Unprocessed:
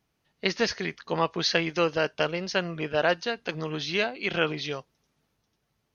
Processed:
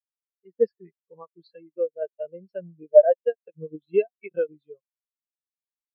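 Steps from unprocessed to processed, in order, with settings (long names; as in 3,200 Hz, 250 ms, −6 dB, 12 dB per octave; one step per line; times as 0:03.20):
0:00.96–0:02.02: downward compressor 1.5 to 1, threshold −33 dBFS, peak gain reduction 5.5 dB
0:03.05–0:04.49: transient designer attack +10 dB, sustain −11 dB
brickwall limiter −13 dBFS, peak gain reduction 8.5 dB
automatic gain control gain up to 12 dB
every bin expanded away from the loudest bin 4 to 1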